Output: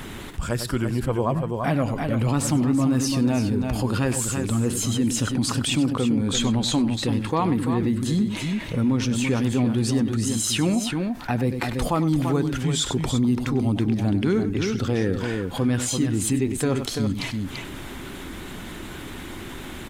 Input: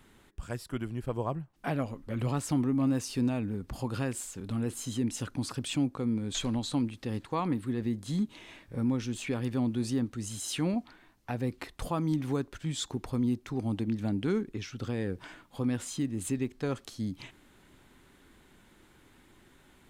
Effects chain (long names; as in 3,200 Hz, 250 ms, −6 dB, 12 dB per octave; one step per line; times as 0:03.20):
spectral magnitudes quantised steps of 15 dB
multi-tap delay 98/338 ms −14.5/−8.5 dB
envelope flattener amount 50%
level +6 dB